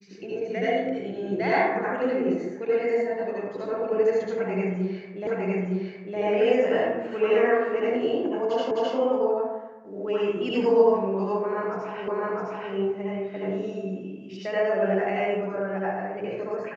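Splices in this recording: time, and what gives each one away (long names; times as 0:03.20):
0:05.27: the same again, the last 0.91 s
0:08.71: the same again, the last 0.26 s
0:12.08: the same again, the last 0.66 s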